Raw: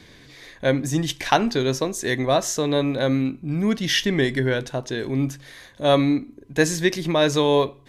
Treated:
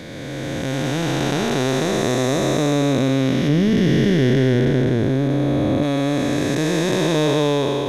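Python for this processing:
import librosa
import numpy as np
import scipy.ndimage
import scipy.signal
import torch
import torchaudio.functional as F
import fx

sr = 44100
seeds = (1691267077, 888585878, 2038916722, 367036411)

y = fx.spec_blur(x, sr, span_ms=1010.0)
y = fx.tilt_shelf(y, sr, db=4.5, hz=910.0, at=(3.48, 5.83))
y = y * librosa.db_to_amplitude(8.0)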